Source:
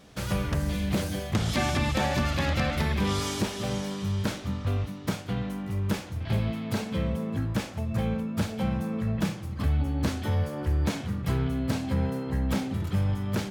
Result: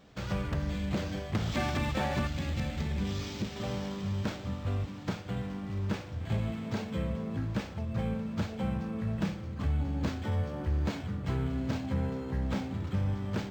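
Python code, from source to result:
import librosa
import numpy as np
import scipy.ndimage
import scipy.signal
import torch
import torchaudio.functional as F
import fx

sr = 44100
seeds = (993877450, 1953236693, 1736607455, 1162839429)

y = fx.peak_eq(x, sr, hz=1000.0, db=-13.5, octaves=2.2, at=(2.27, 3.56))
y = fx.echo_diffused(y, sr, ms=743, feedback_pct=69, wet_db=-15.5)
y = np.interp(np.arange(len(y)), np.arange(len(y))[::4], y[::4])
y = y * librosa.db_to_amplitude(-4.5)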